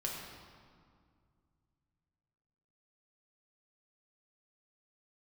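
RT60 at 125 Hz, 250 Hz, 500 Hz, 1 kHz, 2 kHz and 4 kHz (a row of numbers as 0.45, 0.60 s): 3.5, 2.8, 2.1, 2.1, 1.6, 1.4 s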